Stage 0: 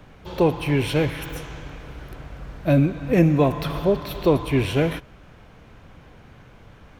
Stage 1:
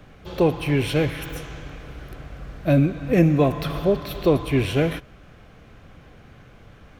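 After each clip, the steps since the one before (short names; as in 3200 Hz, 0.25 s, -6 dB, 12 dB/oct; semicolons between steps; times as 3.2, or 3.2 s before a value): notch 930 Hz, Q 7.2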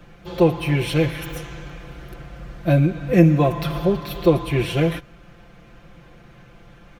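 comb 5.8 ms, depth 79%; gain -1 dB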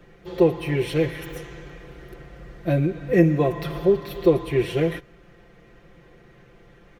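small resonant body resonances 410/1900 Hz, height 11 dB, ringing for 30 ms; gain -6 dB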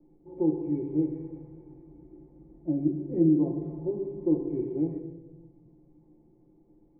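vocal tract filter u; reverb RT60 1.1 s, pre-delay 3 ms, DRR 2.5 dB; gain -2 dB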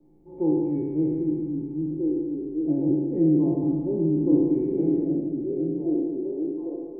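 spectral trails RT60 1.67 s; delay with a stepping band-pass 0.795 s, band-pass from 210 Hz, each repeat 0.7 oct, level 0 dB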